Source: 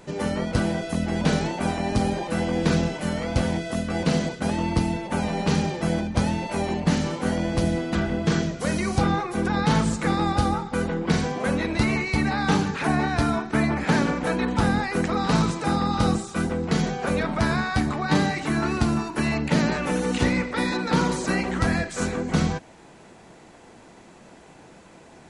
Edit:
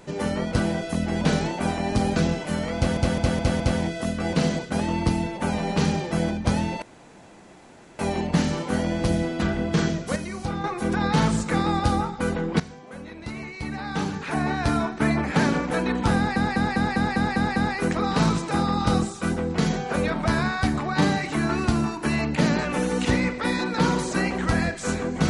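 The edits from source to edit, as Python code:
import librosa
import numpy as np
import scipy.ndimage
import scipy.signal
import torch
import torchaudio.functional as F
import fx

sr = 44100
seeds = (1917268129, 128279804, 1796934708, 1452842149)

y = fx.edit(x, sr, fx.cut(start_s=2.16, length_s=0.54),
    fx.stutter(start_s=3.3, slice_s=0.21, count=5),
    fx.insert_room_tone(at_s=6.52, length_s=1.17),
    fx.clip_gain(start_s=8.69, length_s=0.48, db=-7.5),
    fx.fade_in_from(start_s=11.13, length_s=2.16, curve='qua', floor_db=-16.5),
    fx.stutter(start_s=14.69, slice_s=0.2, count=8), tone=tone)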